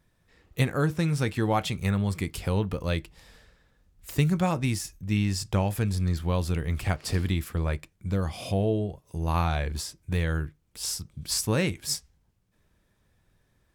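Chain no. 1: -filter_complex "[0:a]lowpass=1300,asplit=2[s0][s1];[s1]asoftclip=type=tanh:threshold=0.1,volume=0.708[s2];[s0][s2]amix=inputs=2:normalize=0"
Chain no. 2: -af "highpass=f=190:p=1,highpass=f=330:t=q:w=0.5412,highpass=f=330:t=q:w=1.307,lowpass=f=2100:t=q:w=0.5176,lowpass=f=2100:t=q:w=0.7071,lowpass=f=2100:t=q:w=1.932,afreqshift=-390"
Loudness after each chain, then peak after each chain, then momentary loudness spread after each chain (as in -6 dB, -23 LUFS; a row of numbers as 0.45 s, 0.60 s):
-25.0 LUFS, -36.5 LUFS; -9.0 dBFS, -13.0 dBFS; 8 LU, 13 LU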